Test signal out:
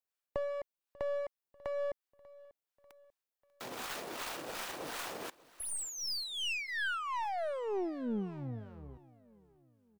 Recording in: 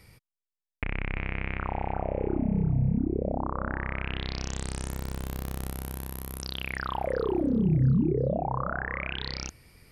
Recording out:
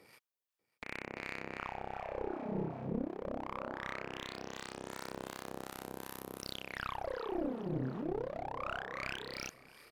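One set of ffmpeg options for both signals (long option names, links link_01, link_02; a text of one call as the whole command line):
ffmpeg -i in.wav -filter_complex "[0:a]aeval=exprs='if(lt(val(0),0),0.447*val(0),val(0))':channel_layout=same,highpass=380,equalizer=frequency=9600:width=0.39:gain=-3,bandreject=frequency=2100:width=23,alimiter=level_in=2dB:limit=-24dB:level=0:latency=1:release=123,volume=-2dB,acompressor=threshold=-36dB:ratio=16,acrossover=split=760[link_01][link_02];[link_01]aeval=exprs='val(0)*(1-0.7/2+0.7/2*cos(2*PI*2.7*n/s))':channel_layout=same[link_03];[link_02]aeval=exprs='val(0)*(1-0.7/2-0.7/2*cos(2*PI*2.7*n/s))':channel_layout=same[link_04];[link_03][link_04]amix=inputs=2:normalize=0,aeval=exprs='clip(val(0),-1,0.00668)':channel_layout=same,highshelf=frequency=2500:gain=-3,aecho=1:1:592|1184|1776:0.0794|0.0373|0.0175,volume=7.5dB" -ar 44100 -c:a nellymoser out.flv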